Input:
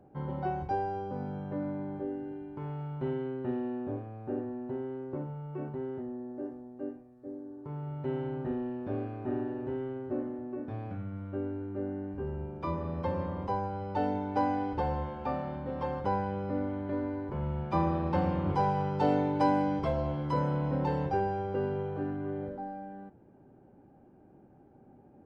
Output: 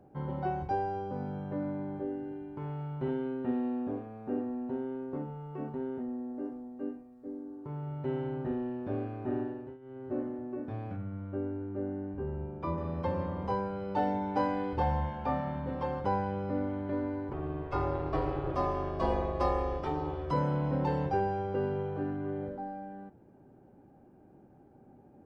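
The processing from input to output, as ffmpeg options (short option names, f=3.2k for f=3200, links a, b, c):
-filter_complex "[0:a]asettb=1/sr,asplit=3[a][b][c];[a]atrim=end=3.084[d];[b]atrim=start=3.08:end=7.66,asetpts=PTS-STARTPTS,afade=t=in:d=0.004:c=qsin,afade=t=out:st=4.576:d=0.004:c=qsin,aecho=1:1:4.3:0.58,atrim=end_sample=201978[e];[c]atrim=start=7.656[f];[d][e]acrossfade=d=0.004:c1=hsin:c2=qsin[g];[g][f]acrossfade=d=0.004:c1=qsin:c2=hsin,asettb=1/sr,asplit=3[h][i][j];[h]atrim=end=10.964[k];[i]atrim=start=10.96:end=12.78,asetpts=PTS-STARTPTS,afade=t=in:d=0.004:c=qsin,afade=t=out:st=1.816:d=0.004:c=qsin,highshelf=f=2.8k:g=-8.5[l];[j]atrim=start=12.776[m];[k][l]acrossfade=d=0.004:c1=hsin:c2=qsin[n];[n][m]acrossfade=d=0.004:c1=qsin:c2=hsin,asettb=1/sr,asplit=3[o][p][q];[o]atrim=end=13.414[r];[p]atrim=start=13.41:end=15.75,asetpts=PTS-STARTPTS,afade=t=in:d=0.004:c=qsin,afade=t=out:st=2.336:d=0.004:c=qsin,asplit=2[s][t];[t]adelay=26,volume=-4dB[u];[s][u]amix=inputs=2:normalize=0,atrim=end_sample=103194[v];[q]atrim=start=15.746[w];[r][v]acrossfade=d=0.004:c1=hsin:c2=qsin[x];[x][w]acrossfade=d=0.004:c1=qsin:c2=hsin,asettb=1/sr,asplit=3[y][z][aa];[y]atrim=end=17.334[ab];[z]atrim=start=17.33:end=20.31,asetpts=PTS-STARTPTS,afade=t=in:d=0.004:c=qsin,afade=t=out:st=2.976:d=0.004:c=qsin,aeval=exprs='val(0)*sin(2*PI*230*n/s)':c=same[ac];[aa]atrim=start=20.306[ad];[ab][ac]acrossfade=d=0.004:c1=hsin:c2=qsin[ae];[ae][ad]acrossfade=d=0.004:c1=qsin:c2=hsin,asplit=3[af][ag][ah];[af]atrim=end=9.78,asetpts=PTS-STARTPTS,afade=t=out:st=9.41:d=0.37:silence=0.125893[ai];[ag]atrim=start=9.78:end=9.81,asetpts=PTS-STARTPTS,volume=-18dB[aj];[ah]atrim=start=9.81,asetpts=PTS-STARTPTS,afade=t=in:d=0.37:silence=0.125893[ak];[ai][aj][ak]concat=n=3:v=0:a=1"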